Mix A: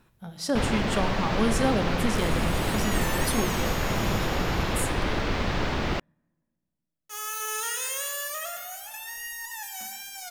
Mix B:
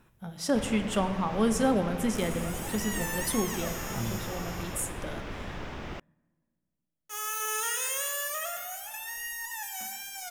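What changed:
first sound -11.5 dB; master: add bell 4300 Hz -6.5 dB 0.37 oct

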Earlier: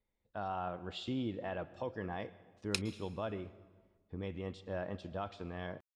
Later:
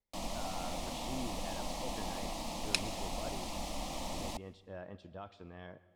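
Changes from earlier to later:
speech -7.0 dB; first sound: unmuted; second sound +3.5 dB

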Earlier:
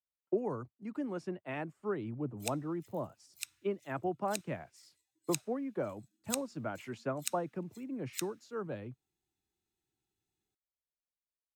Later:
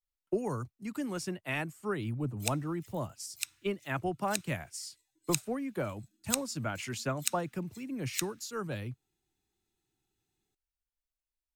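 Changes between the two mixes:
speech: remove band-pass 470 Hz, Q 0.62; background +5.5 dB

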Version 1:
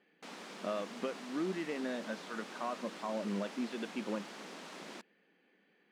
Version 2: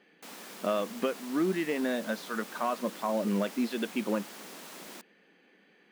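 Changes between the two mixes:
speech +7.5 dB; master: remove air absorption 85 m

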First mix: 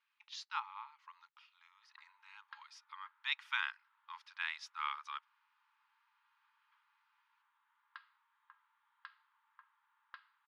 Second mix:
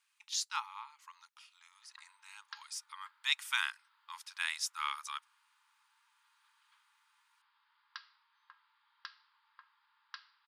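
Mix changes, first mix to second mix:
background: remove air absorption 220 m; master: remove air absorption 280 m

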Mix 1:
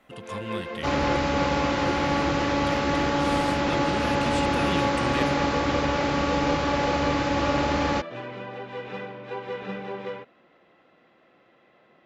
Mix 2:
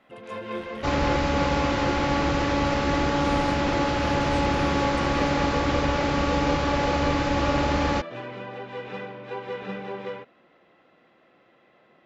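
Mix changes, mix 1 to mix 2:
speech -10.0 dB; second sound: remove HPF 92 Hz 6 dB/oct

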